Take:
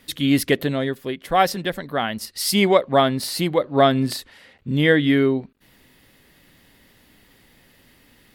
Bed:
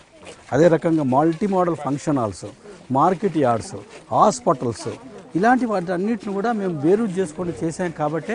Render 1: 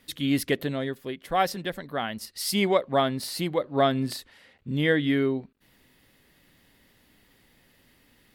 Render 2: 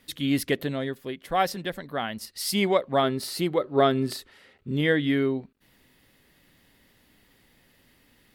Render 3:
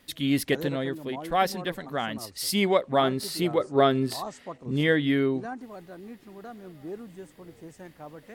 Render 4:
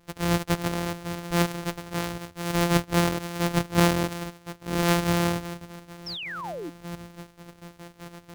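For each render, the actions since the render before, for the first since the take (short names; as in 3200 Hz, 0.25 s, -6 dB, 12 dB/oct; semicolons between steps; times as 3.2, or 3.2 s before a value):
gain -6.5 dB
3.03–4.81 small resonant body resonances 390/1300 Hz, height 9 dB
add bed -21 dB
sample sorter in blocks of 256 samples; 6.06–6.7 painted sound fall 280–5700 Hz -35 dBFS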